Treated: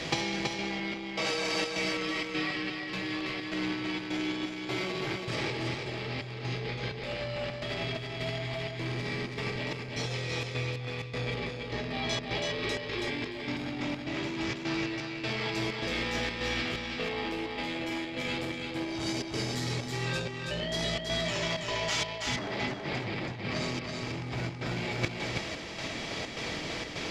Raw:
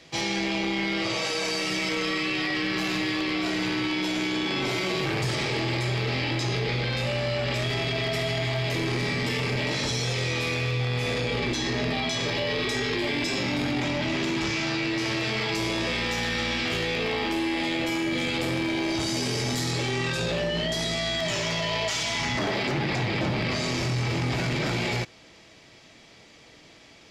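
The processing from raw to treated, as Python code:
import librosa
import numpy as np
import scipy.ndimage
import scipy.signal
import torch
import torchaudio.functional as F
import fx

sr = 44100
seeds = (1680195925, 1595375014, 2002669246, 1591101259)

y = fx.high_shelf(x, sr, hz=6800.0, db=-8.0)
y = fx.over_compress(y, sr, threshold_db=-35.0, ratio=-0.5)
y = fx.step_gate(y, sr, bpm=128, pattern='xxxx.xxx..xxxx.', floor_db=-60.0, edge_ms=4.5)
y = y + 10.0 ** (-4.0 / 20.0) * np.pad(y, (int(327 * sr / 1000.0), 0))[:len(y)]
y = y * 10.0 ** (5.0 / 20.0)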